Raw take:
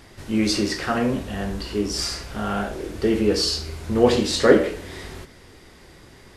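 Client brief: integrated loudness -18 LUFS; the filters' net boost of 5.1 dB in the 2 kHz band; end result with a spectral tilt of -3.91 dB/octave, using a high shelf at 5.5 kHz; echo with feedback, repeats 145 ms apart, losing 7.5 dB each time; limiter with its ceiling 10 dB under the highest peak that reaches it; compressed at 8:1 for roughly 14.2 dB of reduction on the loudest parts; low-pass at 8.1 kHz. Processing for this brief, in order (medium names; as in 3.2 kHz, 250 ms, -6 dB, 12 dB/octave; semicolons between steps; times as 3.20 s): low-pass 8.1 kHz; peaking EQ 2 kHz +6 dB; treble shelf 5.5 kHz +3.5 dB; compression 8:1, threshold -23 dBFS; peak limiter -22.5 dBFS; feedback delay 145 ms, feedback 42%, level -7.5 dB; trim +13 dB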